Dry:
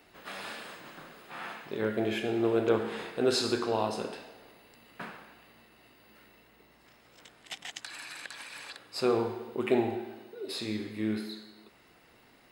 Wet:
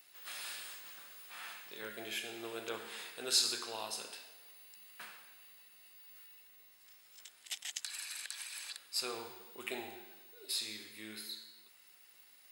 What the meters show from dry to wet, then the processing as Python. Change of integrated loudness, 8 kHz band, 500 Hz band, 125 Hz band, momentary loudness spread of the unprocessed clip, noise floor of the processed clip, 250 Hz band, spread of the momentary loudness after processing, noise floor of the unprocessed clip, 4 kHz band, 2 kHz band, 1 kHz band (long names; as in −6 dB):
−7.5 dB, +5.5 dB, −17.5 dB, −23.5 dB, 17 LU, −63 dBFS, −20.0 dB, 19 LU, −61 dBFS, +0.5 dB, −5.5 dB, −12.0 dB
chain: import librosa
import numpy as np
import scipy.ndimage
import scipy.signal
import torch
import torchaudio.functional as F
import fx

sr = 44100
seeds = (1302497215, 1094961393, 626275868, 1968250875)

y = librosa.effects.preemphasis(x, coef=0.97, zi=[0.0])
y = y * 10.0 ** (5.5 / 20.0)